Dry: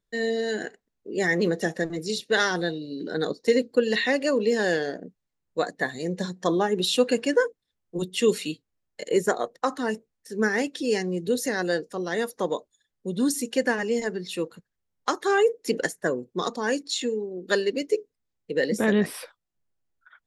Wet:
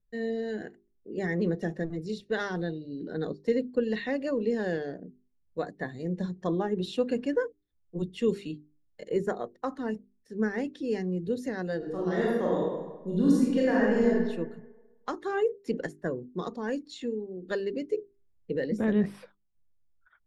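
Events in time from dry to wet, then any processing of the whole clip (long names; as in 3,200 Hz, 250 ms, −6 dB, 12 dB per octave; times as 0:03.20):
0:11.77–0:14.09: thrown reverb, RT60 1.2 s, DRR −6.5 dB
0:17.97–0:18.56: clip gain +5 dB
whole clip: RIAA equalisation playback; mains-hum notches 50/100/150/200/250/300/350/400 Hz; level −9 dB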